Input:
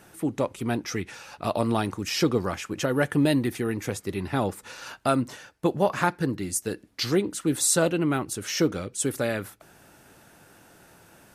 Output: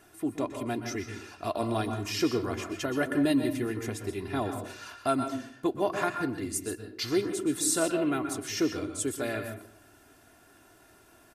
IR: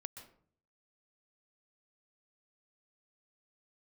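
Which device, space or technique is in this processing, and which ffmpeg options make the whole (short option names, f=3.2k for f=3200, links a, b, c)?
microphone above a desk: -filter_complex "[0:a]aecho=1:1:2.9:0.62[a];[1:a]atrim=start_sample=2205[b];[a][b]afir=irnorm=-1:irlink=0,volume=-1.5dB"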